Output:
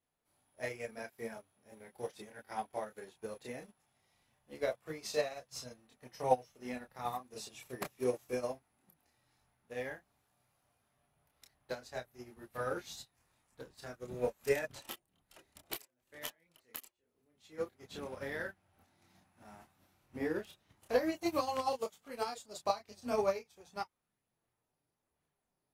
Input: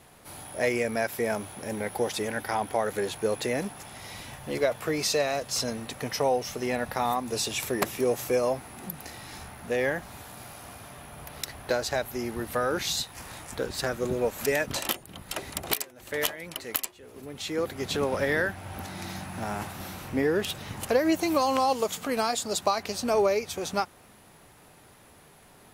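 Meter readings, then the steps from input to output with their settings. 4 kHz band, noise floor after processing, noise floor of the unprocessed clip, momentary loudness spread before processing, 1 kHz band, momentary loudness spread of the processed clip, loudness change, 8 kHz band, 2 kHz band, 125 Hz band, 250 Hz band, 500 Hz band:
−16.0 dB, below −85 dBFS, −55 dBFS, 15 LU, −10.5 dB, 18 LU, −10.5 dB, −17.5 dB, −13.5 dB, −14.5 dB, −12.5 dB, −10.5 dB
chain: multi-voice chorus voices 6, 0.33 Hz, delay 28 ms, depth 4.5 ms
expander for the loud parts 2.5 to 1, over −42 dBFS

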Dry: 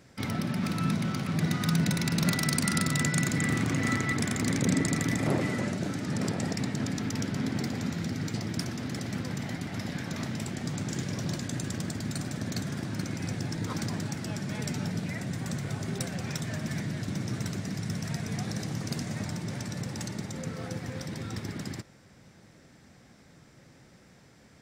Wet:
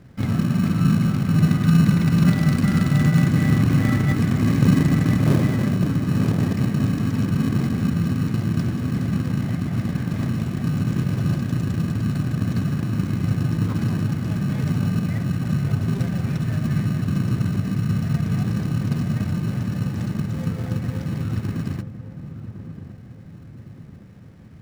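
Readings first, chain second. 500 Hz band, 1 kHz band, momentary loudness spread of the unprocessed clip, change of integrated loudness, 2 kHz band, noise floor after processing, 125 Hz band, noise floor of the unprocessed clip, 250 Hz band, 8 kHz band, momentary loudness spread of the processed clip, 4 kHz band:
+4.5 dB, +4.0 dB, 9 LU, +10.0 dB, +1.5 dB, −41 dBFS, +12.5 dB, −56 dBFS, +10.0 dB, −5.5 dB, 9 LU, −0.5 dB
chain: bass and treble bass +9 dB, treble −14 dB
in parallel at −4 dB: decimation without filtering 32×
on the sum: feedback echo with a low-pass in the loop 1,110 ms, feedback 48%, low-pass 930 Hz, level −11 dB

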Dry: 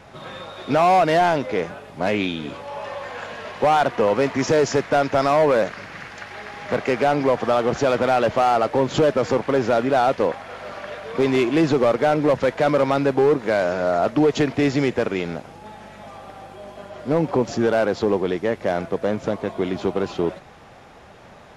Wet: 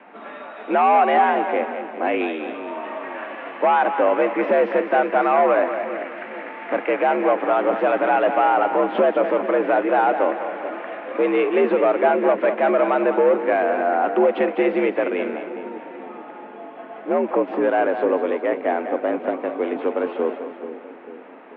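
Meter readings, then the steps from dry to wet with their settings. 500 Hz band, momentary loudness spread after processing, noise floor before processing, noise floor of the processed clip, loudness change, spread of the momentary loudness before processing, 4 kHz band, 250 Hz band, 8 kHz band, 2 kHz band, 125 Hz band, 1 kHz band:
+0.5 dB, 15 LU, −45 dBFS, −39 dBFS, 0.0 dB, 17 LU, can't be measured, −2.0 dB, below −40 dB, +1.5 dB, below −15 dB, +2.5 dB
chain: single-sideband voice off tune +68 Hz 160–2,700 Hz
echo with a time of its own for lows and highs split 470 Hz, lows 440 ms, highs 201 ms, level −9 dB

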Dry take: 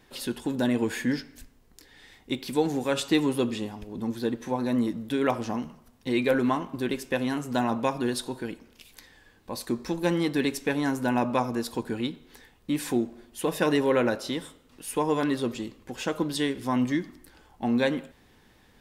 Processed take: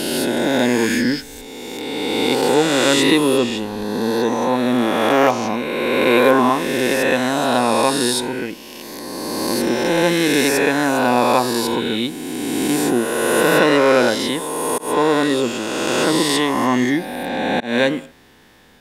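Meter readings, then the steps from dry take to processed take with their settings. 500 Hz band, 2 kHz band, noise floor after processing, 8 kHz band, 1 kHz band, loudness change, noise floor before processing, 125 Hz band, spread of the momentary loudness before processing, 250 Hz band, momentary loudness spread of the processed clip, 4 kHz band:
+12.0 dB, +14.0 dB, −37 dBFS, +15.5 dB, +13.0 dB, +10.5 dB, −59 dBFS, +5.5 dB, 10 LU, +8.5 dB, 11 LU, +14.5 dB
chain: peak hold with a rise ahead of every peak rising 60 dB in 2.60 s
volume swells 213 ms
low-shelf EQ 120 Hz −10 dB
level +7 dB

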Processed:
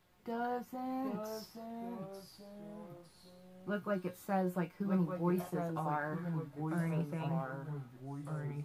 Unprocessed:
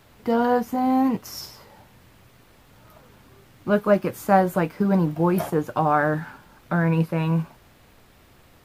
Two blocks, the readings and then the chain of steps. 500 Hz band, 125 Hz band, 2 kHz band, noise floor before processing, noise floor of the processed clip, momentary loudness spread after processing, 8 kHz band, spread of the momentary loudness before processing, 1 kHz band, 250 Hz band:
−16.0 dB, −12.0 dB, −15.5 dB, −54 dBFS, −61 dBFS, 15 LU, −14.5 dB, 13 LU, −16.5 dB, −14.0 dB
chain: tuned comb filter 180 Hz, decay 0.15 s, harmonics all, mix 80%
delay with pitch and tempo change per echo 734 ms, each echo −2 semitones, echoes 3, each echo −6 dB
level −9 dB

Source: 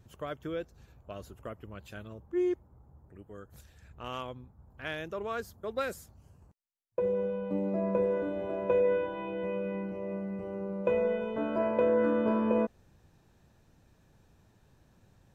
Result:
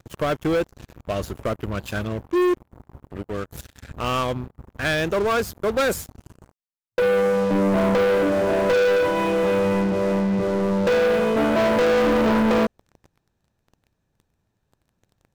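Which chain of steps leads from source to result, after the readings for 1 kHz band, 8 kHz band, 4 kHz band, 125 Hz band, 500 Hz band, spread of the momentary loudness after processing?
+13.5 dB, can't be measured, +18.0 dB, +14.0 dB, +10.5 dB, 13 LU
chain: leveller curve on the samples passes 5

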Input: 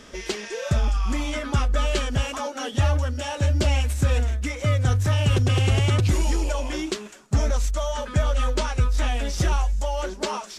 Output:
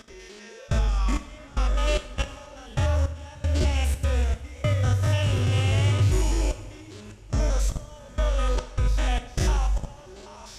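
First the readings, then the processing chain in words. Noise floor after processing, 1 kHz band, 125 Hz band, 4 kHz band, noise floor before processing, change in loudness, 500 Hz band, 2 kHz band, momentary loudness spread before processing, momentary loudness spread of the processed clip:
−45 dBFS, −4.5 dB, −2.0 dB, −4.0 dB, −40 dBFS, −2.0 dB, −4.0 dB, −4.0 dB, 8 LU, 20 LU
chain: spectrum averaged block by block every 100 ms
output level in coarse steps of 24 dB
coupled-rooms reverb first 0.53 s, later 4.6 s, from −18 dB, DRR 7 dB
level +3 dB

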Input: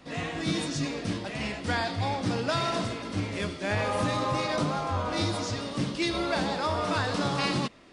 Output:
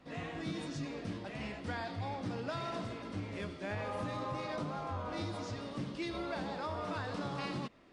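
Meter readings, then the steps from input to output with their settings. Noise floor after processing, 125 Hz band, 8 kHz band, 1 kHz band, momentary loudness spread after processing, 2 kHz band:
−47 dBFS, −9.5 dB, −16.5 dB, −10.5 dB, 3 LU, −11.5 dB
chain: high-shelf EQ 3,700 Hz −9.5 dB
downward compressor 2 to 1, threshold −30 dBFS, peak gain reduction 4.5 dB
level −7 dB

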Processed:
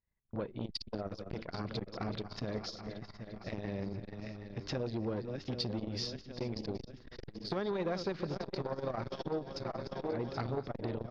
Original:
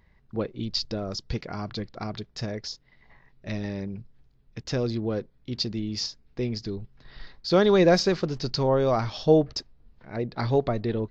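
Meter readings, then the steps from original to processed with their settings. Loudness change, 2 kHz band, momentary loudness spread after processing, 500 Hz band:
−12.5 dB, −11.5 dB, 9 LU, −13.0 dB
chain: feedback delay that plays each chunk backwards 389 ms, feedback 71%, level −11.5 dB
low-pass filter 3,900 Hz 12 dB per octave
downward expander −43 dBFS
downward compressor 8 to 1, threshold −30 dBFS, peak gain reduction 16.5 dB
on a send: single-tap delay 188 ms −23 dB
on the sum: saturating transformer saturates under 680 Hz

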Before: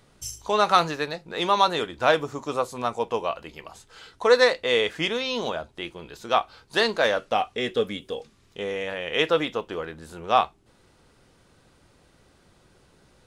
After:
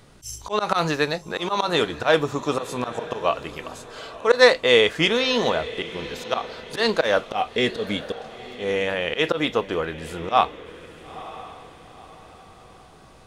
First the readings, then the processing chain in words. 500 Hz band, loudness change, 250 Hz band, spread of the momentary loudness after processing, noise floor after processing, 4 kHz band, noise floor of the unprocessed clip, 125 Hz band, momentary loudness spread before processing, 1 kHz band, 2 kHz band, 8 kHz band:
+2.5 dB, +2.0 dB, +5.0 dB, 20 LU, −48 dBFS, +3.0 dB, −60 dBFS, +6.0 dB, 17 LU, −0.5 dB, +3.5 dB, +2.5 dB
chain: low-shelf EQ 200 Hz +2 dB
volume swells 137 ms
on a send: feedback delay with all-pass diffusion 939 ms, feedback 41%, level −15.5 dB
on the sum: level +6 dB

